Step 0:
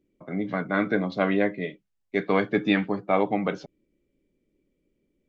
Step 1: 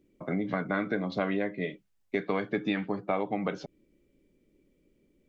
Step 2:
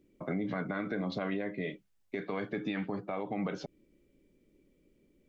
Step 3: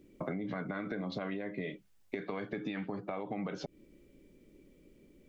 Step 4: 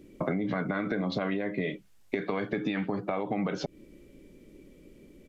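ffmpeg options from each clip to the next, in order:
ffmpeg -i in.wav -af "acompressor=threshold=-33dB:ratio=4,volume=5dB" out.wav
ffmpeg -i in.wav -af "alimiter=level_in=1dB:limit=-24dB:level=0:latency=1:release=40,volume=-1dB" out.wav
ffmpeg -i in.wav -af "acompressor=threshold=-42dB:ratio=6,volume=7dB" out.wav
ffmpeg -i in.wav -af "aresample=32000,aresample=44100,volume=7.5dB" out.wav

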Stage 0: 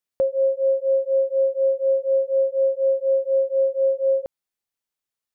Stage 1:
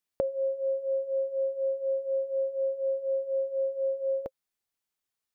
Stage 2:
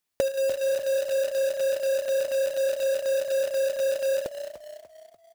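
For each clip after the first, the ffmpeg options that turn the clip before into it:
ffmpeg -i in.wav -af "bandreject=frequency=530:width=12" out.wav
ffmpeg -i in.wav -filter_complex "[0:a]asplit=6[link_01][link_02][link_03][link_04][link_05][link_06];[link_02]adelay=294,afreqshift=31,volume=-12dB[link_07];[link_03]adelay=588,afreqshift=62,volume=-18.7dB[link_08];[link_04]adelay=882,afreqshift=93,volume=-25.5dB[link_09];[link_05]adelay=1176,afreqshift=124,volume=-32.2dB[link_10];[link_06]adelay=1470,afreqshift=155,volume=-39dB[link_11];[link_01][link_07][link_08][link_09][link_10][link_11]amix=inputs=6:normalize=0,acrusher=bits=2:mode=log:mix=0:aa=0.000001,volume=3.5dB" out.wav

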